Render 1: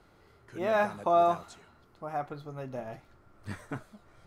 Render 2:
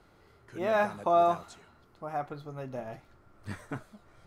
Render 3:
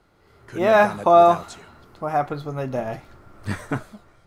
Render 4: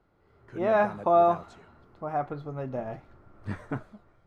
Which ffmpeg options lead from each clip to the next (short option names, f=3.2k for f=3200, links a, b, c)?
-af anull
-af "dynaudnorm=f=110:g=7:m=12dB"
-af "lowpass=f=1.4k:p=1,volume=-6.5dB"